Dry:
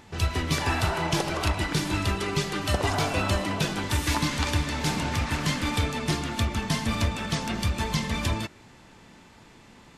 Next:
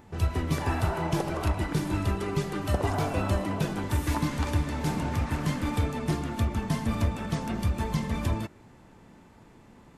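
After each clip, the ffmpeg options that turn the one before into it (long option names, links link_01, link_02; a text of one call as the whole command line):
ffmpeg -i in.wav -af "equalizer=frequency=4200:width_type=o:width=2.8:gain=-11.5" out.wav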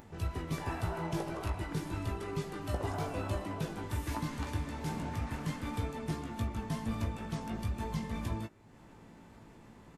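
ffmpeg -i in.wav -filter_complex "[0:a]acompressor=mode=upward:threshold=-38dB:ratio=2.5,asplit=2[link_01][link_02];[link_02]adelay=18,volume=-6.5dB[link_03];[link_01][link_03]amix=inputs=2:normalize=0,volume=-9dB" out.wav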